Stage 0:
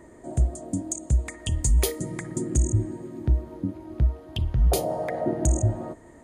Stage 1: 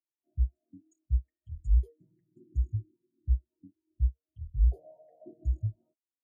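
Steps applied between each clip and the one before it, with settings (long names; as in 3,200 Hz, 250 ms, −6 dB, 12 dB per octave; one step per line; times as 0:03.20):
every bin expanded away from the loudest bin 2.5 to 1
level −4 dB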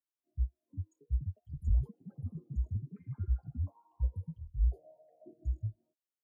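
delay with pitch and tempo change per echo 520 ms, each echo +7 semitones, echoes 3, each echo −6 dB
level −5 dB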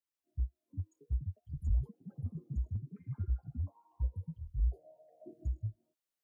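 camcorder AGC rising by 9.3 dB per second
level −2.5 dB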